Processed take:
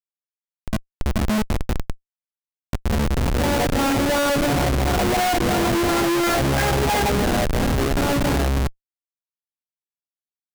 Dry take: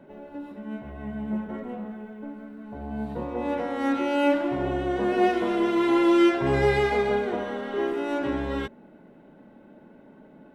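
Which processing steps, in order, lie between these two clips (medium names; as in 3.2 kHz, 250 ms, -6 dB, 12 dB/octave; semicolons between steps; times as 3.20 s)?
comb 1.3 ms, depth 68%; LFO low-pass sine 2.9 Hz 390–2100 Hz; Schmitt trigger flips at -25.5 dBFS; trim +6.5 dB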